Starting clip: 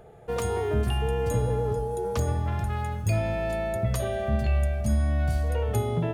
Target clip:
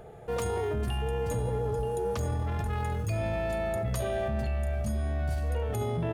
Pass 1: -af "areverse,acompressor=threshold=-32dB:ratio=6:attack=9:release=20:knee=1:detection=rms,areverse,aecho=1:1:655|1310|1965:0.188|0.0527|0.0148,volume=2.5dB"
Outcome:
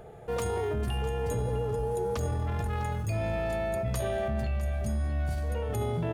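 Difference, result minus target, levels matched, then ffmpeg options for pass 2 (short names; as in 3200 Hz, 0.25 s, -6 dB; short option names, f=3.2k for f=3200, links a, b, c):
echo 0.274 s early
-af "areverse,acompressor=threshold=-32dB:ratio=6:attack=9:release=20:knee=1:detection=rms,areverse,aecho=1:1:929|1858|2787:0.188|0.0527|0.0148,volume=2.5dB"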